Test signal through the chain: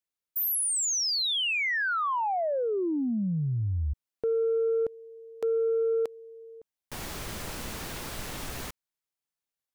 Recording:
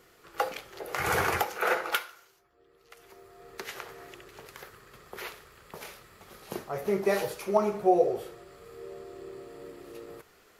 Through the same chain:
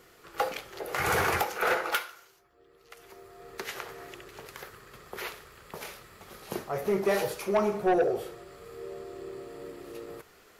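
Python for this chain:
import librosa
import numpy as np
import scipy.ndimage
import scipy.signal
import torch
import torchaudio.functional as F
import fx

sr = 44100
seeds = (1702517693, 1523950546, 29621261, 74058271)

y = 10.0 ** (-21.0 / 20.0) * np.tanh(x / 10.0 ** (-21.0 / 20.0))
y = F.gain(torch.from_numpy(y), 2.5).numpy()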